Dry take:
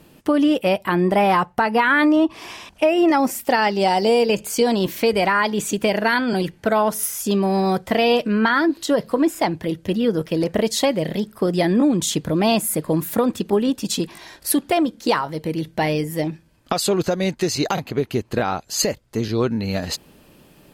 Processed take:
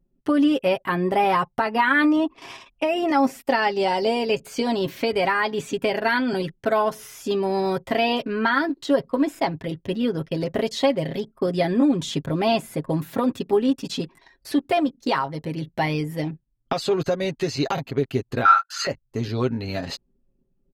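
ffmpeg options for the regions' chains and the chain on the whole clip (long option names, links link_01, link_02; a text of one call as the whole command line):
ffmpeg -i in.wav -filter_complex "[0:a]asettb=1/sr,asplit=3[link_01][link_02][link_03];[link_01]atrim=end=18.454[link_04];[link_02]atrim=start=18.45:end=18.87,asetpts=PTS-STARTPTS,afade=type=in:duration=0.004:curve=qsin,afade=type=out:start_time=0.416:duration=0.004:curve=qsin,highpass=frequency=1400:width_type=q:width=13,asplit=2[link_05][link_06];[link_06]adelay=26,volume=-7dB[link_07];[link_05][link_07]amix=inputs=2:normalize=0,atrim=end_sample=18522[link_08];[link_03]atrim=start=18.866[link_09];[link_04][link_08]acrossfade=duration=0.004:curve1=hsin:curve2=qsin[link_10];[link_10][link_09]acrossfade=duration=0.004:curve1=qsin:curve2=hsin,anlmdn=2.51,acrossover=split=5000[link_11][link_12];[link_12]acompressor=threshold=-43dB:ratio=4:attack=1:release=60[link_13];[link_11][link_13]amix=inputs=2:normalize=0,aecho=1:1:7.4:0.6,volume=-4dB" out.wav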